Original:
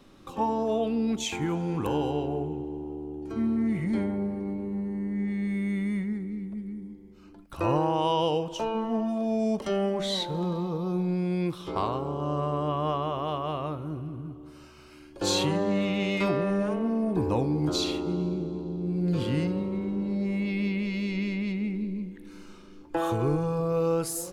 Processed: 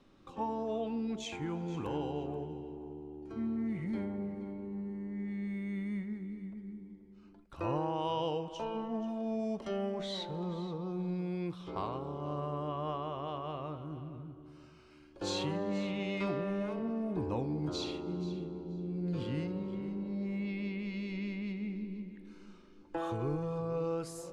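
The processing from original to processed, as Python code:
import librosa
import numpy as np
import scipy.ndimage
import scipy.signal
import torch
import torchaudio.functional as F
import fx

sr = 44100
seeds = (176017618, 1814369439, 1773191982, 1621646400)

y = fx.air_absorb(x, sr, metres=63.0)
y = fx.echo_feedback(y, sr, ms=480, feedback_pct=16, wet_db=-15.0)
y = y * librosa.db_to_amplitude(-8.5)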